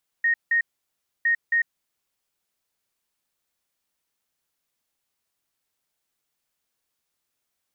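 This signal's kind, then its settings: beep pattern sine 1860 Hz, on 0.10 s, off 0.17 s, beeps 2, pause 0.64 s, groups 2, -17.5 dBFS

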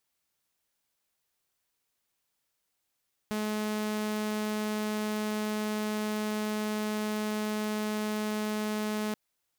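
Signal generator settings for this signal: tone saw 213 Hz -27 dBFS 5.83 s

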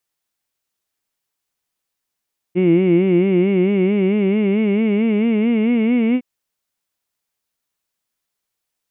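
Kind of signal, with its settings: formant vowel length 3.66 s, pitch 174 Hz, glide +5.5 st, vibrato 4.5 Hz, vibrato depth 1.1 st, F1 330 Hz, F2 2200 Hz, F3 2800 Hz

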